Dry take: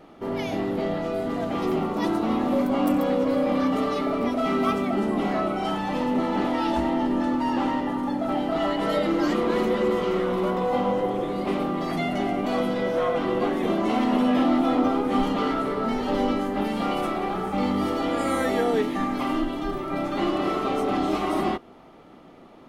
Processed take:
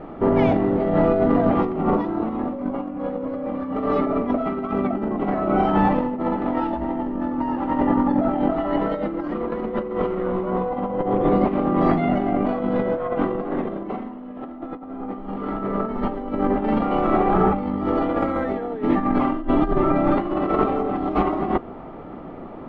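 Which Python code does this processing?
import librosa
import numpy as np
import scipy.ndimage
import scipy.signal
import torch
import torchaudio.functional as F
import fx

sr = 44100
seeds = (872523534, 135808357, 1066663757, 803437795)

y = fx.reverb_throw(x, sr, start_s=13.3, length_s=2.71, rt60_s=2.2, drr_db=3.0)
y = scipy.signal.sosfilt(scipy.signal.butter(2, 1500.0, 'lowpass', fs=sr, output='sos'), y)
y = fx.low_shelf(y, sr, hz=75.0, db=7.0)
y = fx.over_compress(y, sr, threshold_db=-28.0, ratio=-0.5)
y = y * librosa.db_to_amplitude(7.0)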